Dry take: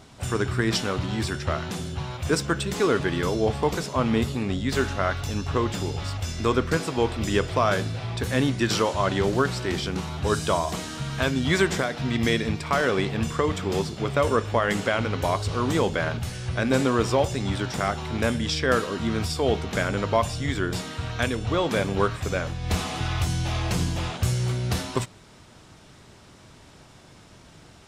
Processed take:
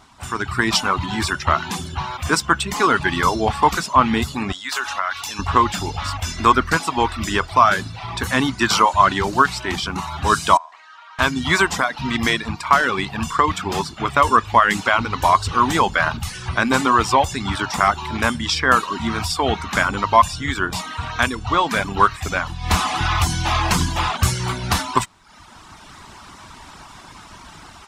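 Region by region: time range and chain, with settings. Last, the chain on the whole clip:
0:04.52–0:05.39: high-pass filter 1,400 Hz 6 dB per octave + downward compressor 3 to 1, threshold −32 dBFS
0:10.57–0:11.19: four-pole ladder band-pass 920 Hz, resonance 20% + spectral tilt +4.5 dB per octave
whole clip: reverb reduction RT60 0.75 s; octave-band graphic EQ 125/500/1,000 Hz −8/−11/+10 dB; automatic gain control

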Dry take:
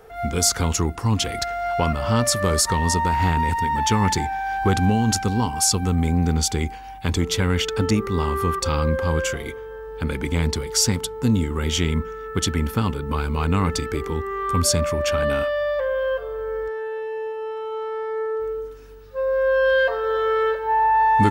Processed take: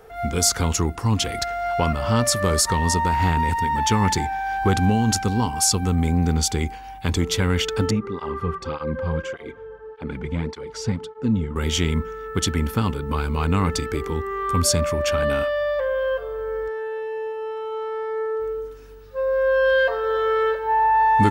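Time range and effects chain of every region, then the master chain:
0:07.91–0:11.56: head-to-tape spacing loss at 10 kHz 22 dB + through-zero flanger with one copy inverted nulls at 1.7 Hz, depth 3.7 ms
whole clip: no processing

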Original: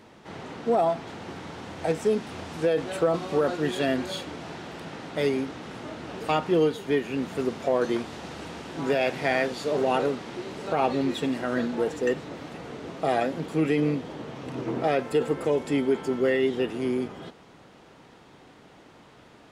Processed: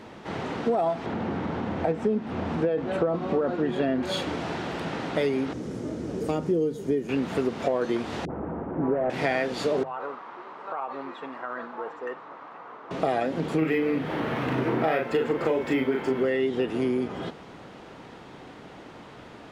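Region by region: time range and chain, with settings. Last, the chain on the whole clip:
0:01.06–0:04.03: low-pass filter 1,400 Hz 6 dB per octave + parametric band 220 Hz +6.5 dB 0.34 octaves + upward compression, threshold −31 dBFS
0:05.53–0:07.09: flat-topped bell 1,700 Hz −13.5 dB 3 octaves + notch filter 2,700 Hz, Q 21
0:08.25–0:09.10: running median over 25 samples + low-pass filter 1,700 Hz 24 dB per octave + all-pass dispersion highs, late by 51 ms, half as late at 650 Hz
0:09.83–0:12.91: resonant band-pass 1,100 Hz, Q 3.3 + downward compressor, threshold −35 dBFS
0:13.58–0:16.25: parametric band 1,800 Hz +7.5 dB 1.5 octaves + double-tracking delay 38 ms −3.5 dB + linearly interpolated sample-rate reduction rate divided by 3×
whole clip: high-shelf EQ 5,100 Hz −8 dB; mains-hum notches 50/100/150 Hz; downward compressor 5 to 1, threshold −30 dBFS; level +7.5 dB

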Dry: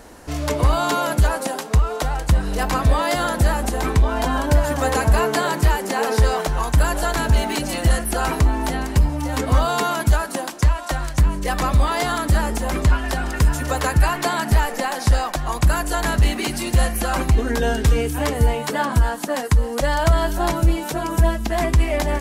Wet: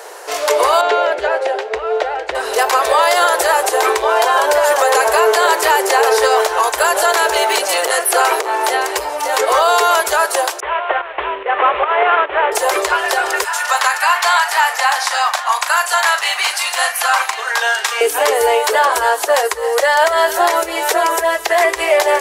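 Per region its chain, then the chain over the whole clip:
0:00.81–0:02.35: low-pass filter 2,300 Hz + parametric band 1,100 Hz −12 dB 0.72 octaves
0:07.43–0:08.66: Bessel high-pass filter 160 Hz, order 4 + saturating transformer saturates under 800 Hz
0:10.60–0:12.52: variable-slope delta modulation 16 kbit/s + fake sidechain pumping 145 BPM, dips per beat 1, −11 dB, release 208 ms
0:13.44–0:18.01: high-pass filter 830 Hz 24 dB per octave + high-shelf EQ 10,000 Hz −9.5 dB + double-tracking delay 38 ms −9.5 dB
0:19.53–0:21.77: parametric band 1,900 Hz +7.5 dB 0.22 octaves + downward compressor 2 to 1, threshold −18 dBFS
whole clip: elliptic high-pass filter 400 Hz, stop band 40 dB; boost into a limiter +15 dB; level −2.5 dB

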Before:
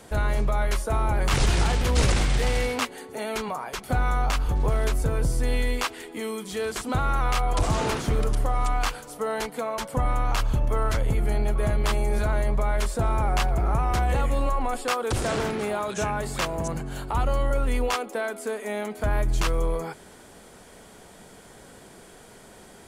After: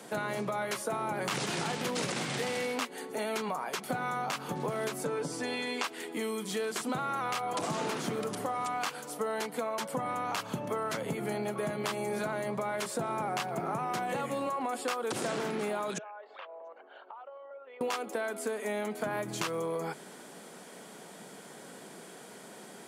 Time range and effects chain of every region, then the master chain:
0:05.05–0:05.84: band-pass filter 230–7,200 Hz + comb filter 6.9 ms, depth 61%
0:15.98–0:17.81: spectral envelope exaggerated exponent 1.5 + elliptic band-pass filter 520–3,400 Hz, stop band 50 dB + downward compressor 3 to 1, threshold −48 dBFS
whole clip: Butterworth high-pass 150 Hz 36 dB per octave; downward compressor, threshold −30 dBFS

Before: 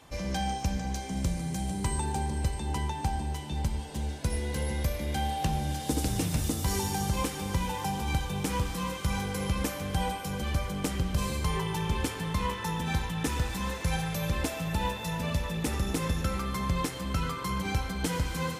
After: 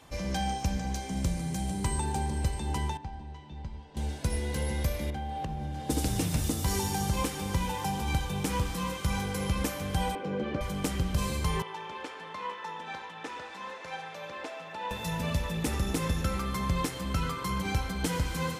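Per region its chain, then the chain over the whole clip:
0:02.97–0:03.97: high-frequency loss of the air 170 metres + tuned comb filter 980 Hz, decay 0.18 s, mix 70%
0:05.10–0:05.90: low-pass filter 1,400 Hz 6 dB per octave + downward compressor 5 to 1, threshold −31 dBFS
0:10.15–0:10.61: band-pass filter 250–2,300 Hz + low shelf with overshoot 610 Hz +7 dB, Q 1.5
0:11.62–0:14.91: high-pass filter 560 Hz + head-to-tape spacing loss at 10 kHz 22 dB
whole clip: no processing

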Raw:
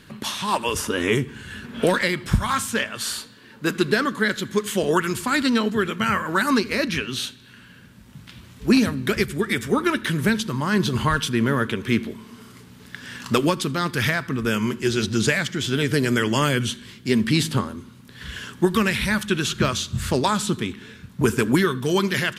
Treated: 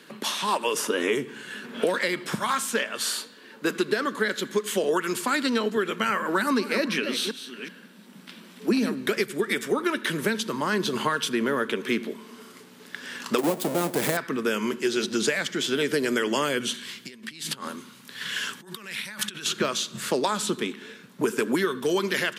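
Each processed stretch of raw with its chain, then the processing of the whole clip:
0:06.19–0:08.94: delay that plays each chunk backwards 374 ms, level −12 dB + low shelf with overshoot 150 Hz −8 dB, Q 3 + notch filter 6,700 Hz, Q 13
0:13.38–0:14.17: each half-wave held at its own peak + flat-topped bell 2,600 Hz −8 dB 2.8 octaves
0:16.74–0:19.46: compressor whose output falls as the input rises −31 dBFS + parametric band 400 Hz −10.5 dB 2.4 octaves
whole clip: Bessel high-pass filter 280 Hz, order 8; parametric band 470 Hz +4.5 dB 0.9 octaves; downward compressor 4 to 1, threshold −21 dBFS

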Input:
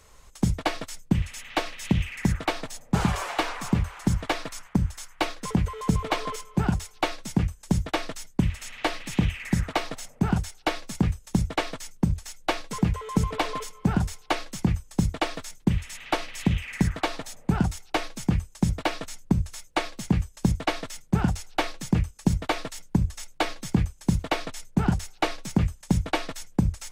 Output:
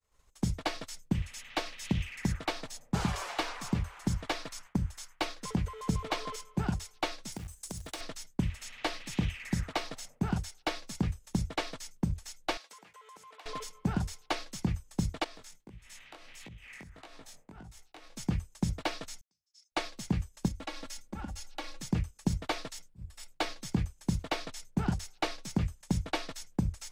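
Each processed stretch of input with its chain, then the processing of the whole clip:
0:07.32–0:08.01: parametric band 9,500 Hz +15 dB 1.4 octaves + downward compressor 5 to 1, threshold −30 dBFS + floating-point word with a short mantissa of 2 bits
0:12.57–0:13.46: high-pass filter 740 Hz + downward compressor 5 to 1, threshold −42 dBFS
0:15.24–0:18.17: downward compressor 16 to 1, threshold −34 dBFS + chorus effect 1.6 Hz, delay 17 ms, depth 5.9 ms
0:19.21–0:19.72: noise gate −42 dBFS, range −25 dB + resonant band-pass 5,200 Hz, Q 6 + level that may fall only so fast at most 73 dB per second
0:20.48–0:21.81: comb filter 3.6 ms, depth 99% + downward compressor 3 to 1, threshold −31 dBFS
0:22.88–0:23.32: notch filter 6,300 Hz, Q 5.6 + volume swells 321 ms
whole clip: downward expander −43 dBFS; dynamic equaliser 4,900 Hz, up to +5 dB, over −47 dBFS, Q 1.2; level −7.5 dB

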